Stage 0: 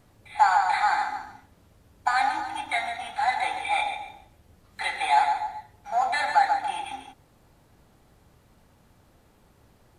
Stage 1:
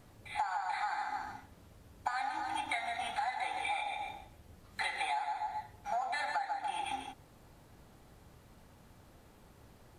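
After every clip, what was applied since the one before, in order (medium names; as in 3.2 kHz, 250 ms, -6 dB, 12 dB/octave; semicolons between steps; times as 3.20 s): compression 16:1, threshold -32 dBFS, peak gain reduction 19 dB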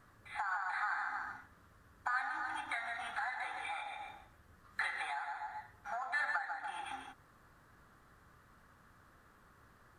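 high-order bell 1.4 kHz +12.5 dB 1 oct; trim -7.5 dB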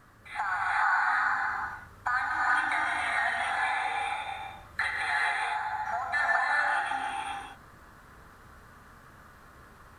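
gated-style reverb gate 450 ms rising, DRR -3 dB; trim +6.5 dB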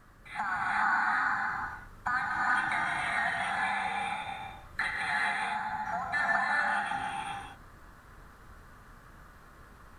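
octave divider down 2 oct, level +2 dB; trim -2 dB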